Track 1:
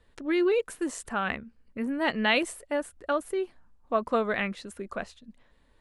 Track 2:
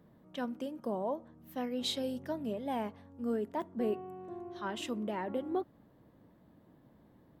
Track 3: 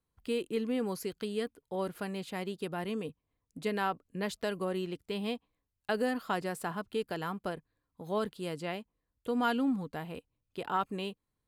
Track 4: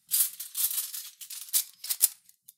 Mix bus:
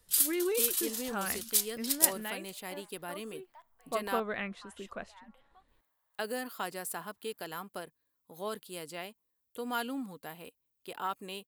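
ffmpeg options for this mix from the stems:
-filter_complex "[0:a]volume=3.5dB,afade=t=out:st=1.84:d=0.53:silence=0.281838,afade=t=in:st=3.66:d=0.29:silence=0.281838[a];[1:a]acompressor=threshold=-39dB:ratio=2.5,highpass=f=900:w=0.5412,highpass=f=900:w=1.3066,volume=-9dB[b];[2:a]aemphasis=mode=production:type=bsi,adelay=300,volume=-4dB,asplit=3[c][d][e];[c]atrim=end=4.2,asetpts=PTS-STARTPTS,afade=t=out:st=4.196:d=0.004:c=hsin[f];[d]atrim=start=4.2:end=5.68,asetpts=PTS-STARTPTS,volume=0[g];[e]atrim=start=5.68,asetpts=PTS-STARTPTS,afade=t=in:d=0.004:c=hsin[h];[f][g][h]concat=n=3:v=0:a=1[i];[3:a]volume=-1.5dB[j];[a][b][i][j]amix=inputs=4:normalize=0"

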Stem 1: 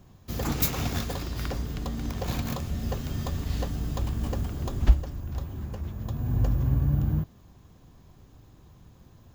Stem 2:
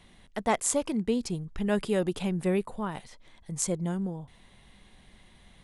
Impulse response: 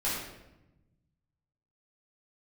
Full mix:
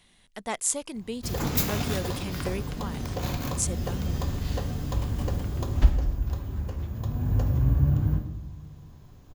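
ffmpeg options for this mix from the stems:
-filter_complex "[0:a]adelay=950,volume=-1.5dB,asplit=2[a][b];[b]volume=-11.5dB[c];[1:a]highshelf=f=2.3k:g=10.5,volume=-7.5dB[d];[2:a]atrim=start_sample=2205[e];[c][e]afir=irnorm=-1:irlink=0[f];[a][d][f]amix=inputs=3:normalize=0"

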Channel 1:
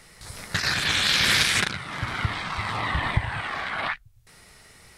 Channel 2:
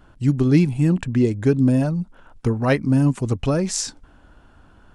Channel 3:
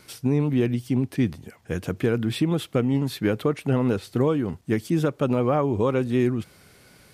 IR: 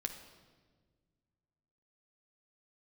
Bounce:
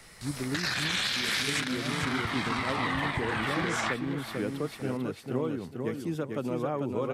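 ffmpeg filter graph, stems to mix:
-filter_complex "[0:a]volume=-1dB,asplit=2[a][b];[b]volume=-13.5dB[c];[1:a]volume=-14.5dB[d];[2:a]adelay=1150,volume=-9.5dB,asplit=2[e][f];[f]volume=-4.5dB[g];[c][g]amix=inputs=2:normalize=0,aecho=0:1:445|890|1335|1780:1|0.28|0.0784|0.022[h];[a][d][e][h]amix=inputs=4:normalize=0,acrossover=split=150|3000[i][j][k];[i]acompressor=threshold=-57dB:ratio=1.5[l];[l][j][k]amix=inputs=3:normalize=0,alimiter=limit=-18.5dB:level=0:latency=1:release=217"

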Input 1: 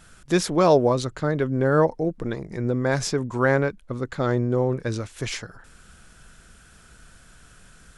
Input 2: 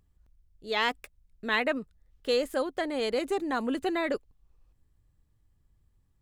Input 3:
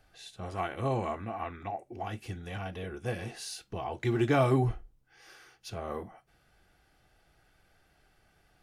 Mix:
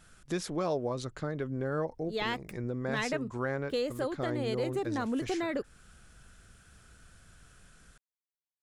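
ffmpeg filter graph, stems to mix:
-filter_complex "[0:a]bandreject=f=940:w=24,volume=-7.5dB[a];[1:a]highpass=66,lowshelf=f=230:g=11.5,adelay=1450,volume=-1dB[b];[a][b]amix=inputs=2:normalize=0,acompressor=threshold=-33dB:ratio=2"

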